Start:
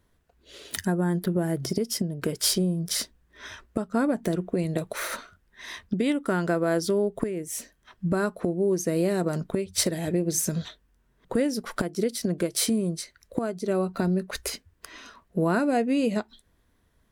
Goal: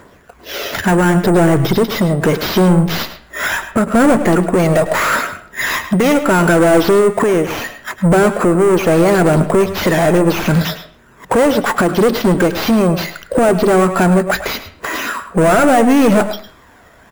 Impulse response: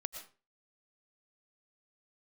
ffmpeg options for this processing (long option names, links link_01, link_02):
-filter_complex "[0:a]aphaser=in_gain=1:out_gain=1:delay=1.6:decay=0.43:speed=0.74:type=triangular,asplit=2[link_01][link_02];[link_02]highpass=frequency=720:poles=1,volume=34dB,asoftclip=type=tanh:threshold=-7dB[link_03];[link_01][link_03]amix=inputs=2:normalize=0,lowpass=frequency=2000:poles=1,volume=-6dB,asplit=2[link_04][link_05];[link_05]adelay=105,volume=-13dB,highshelf=frequency=4000:gain=-2.36[link_06];[link_04][link_06]amix=inputs=2:normalize=0,acrusher=samples=5:mix=1:aa=0.000001,asplit=2[link_07][link_08];[1:a]atrim=start_sample=2205,lowpass=3000[link_09];[link_08][link_09]afir=irnorm=-1:irlink=0,volume=-3dB[link_10];[link_07][link_10]amix=inputs=2:normalize=0"